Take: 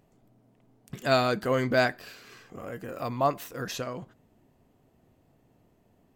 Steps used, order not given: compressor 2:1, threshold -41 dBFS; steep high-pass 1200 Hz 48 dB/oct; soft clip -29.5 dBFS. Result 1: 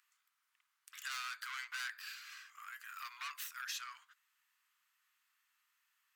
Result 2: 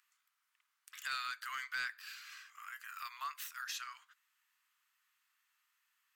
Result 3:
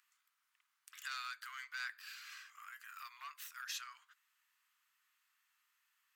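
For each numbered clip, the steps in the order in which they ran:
soft clip > steep high-pass > compressor; steep high-pass > compressor > soft clip; compressor > soft clip > steep high-pass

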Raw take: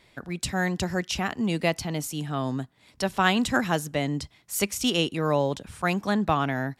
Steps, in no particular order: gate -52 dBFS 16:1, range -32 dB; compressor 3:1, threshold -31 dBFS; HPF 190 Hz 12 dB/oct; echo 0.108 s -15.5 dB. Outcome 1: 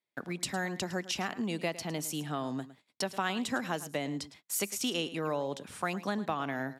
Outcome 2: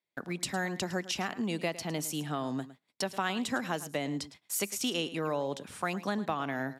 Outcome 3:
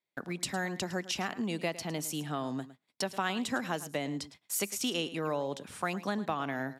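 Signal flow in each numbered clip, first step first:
compressor > echo > gate > HPF; HPF > compressor > gate > echo; compressor > HPF > gate > echo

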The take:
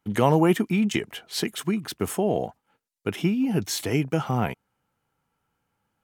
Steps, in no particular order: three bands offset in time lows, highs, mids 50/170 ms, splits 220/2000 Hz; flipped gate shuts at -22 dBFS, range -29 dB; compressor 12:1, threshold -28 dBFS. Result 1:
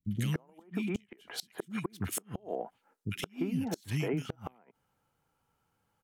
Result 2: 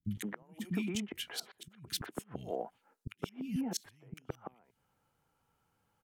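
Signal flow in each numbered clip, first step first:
three bands offset in time > compressor > flipped gate; compressor > flipped gate > three bands offset in time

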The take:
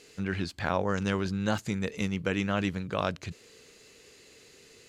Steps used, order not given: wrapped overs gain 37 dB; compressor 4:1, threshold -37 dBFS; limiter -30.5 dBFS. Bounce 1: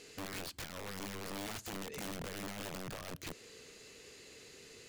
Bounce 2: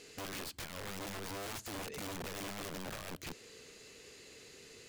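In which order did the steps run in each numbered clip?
limiter > compressor > wrapped overs; limiter > wrapped overs > compressor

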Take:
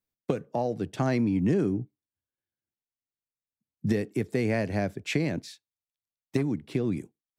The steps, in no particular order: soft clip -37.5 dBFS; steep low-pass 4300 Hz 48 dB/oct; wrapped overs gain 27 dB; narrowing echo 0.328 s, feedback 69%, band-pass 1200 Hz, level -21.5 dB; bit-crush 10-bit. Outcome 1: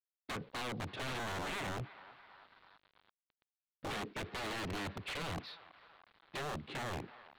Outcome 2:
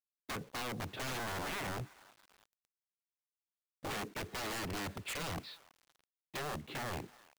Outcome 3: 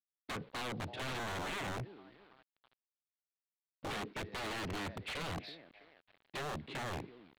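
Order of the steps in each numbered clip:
wrapped overs > narrowing echo > bit-crush > steep low-pass > soft clip; steep low-pass > wrapped overs > soft clip > narrowing echo > bit-crush; narrowing echo > wrapped overs > bit-crush > steep low-pass > soft clip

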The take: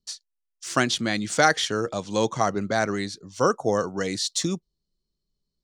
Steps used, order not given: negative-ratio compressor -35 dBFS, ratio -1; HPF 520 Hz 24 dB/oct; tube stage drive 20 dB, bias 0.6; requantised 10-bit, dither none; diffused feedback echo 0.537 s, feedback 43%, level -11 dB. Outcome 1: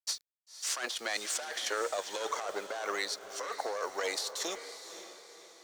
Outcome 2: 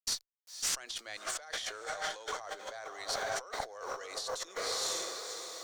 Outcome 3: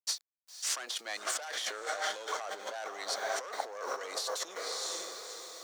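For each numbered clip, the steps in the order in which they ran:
tube stage > HPF > requantised > negative-ratio compressor > diffused feedback echo; diffused feedback echo > requantised > negative-ratio compressor > HPF > tube stage; diffused feedback echo > tube stage > requantised > negative-ratio compressor > HPF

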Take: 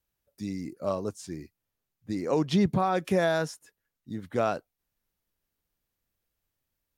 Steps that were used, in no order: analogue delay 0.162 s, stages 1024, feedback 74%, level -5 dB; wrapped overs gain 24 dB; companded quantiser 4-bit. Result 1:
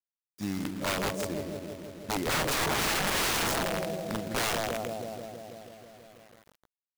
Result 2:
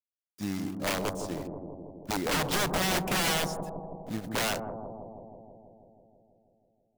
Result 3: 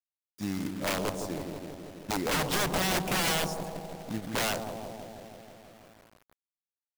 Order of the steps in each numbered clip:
analogue delay > wrapped overs > companded quantiser; wrapped overs > companded quantiser > analogue delay; wrapped overs > analogue delay > companded quantiser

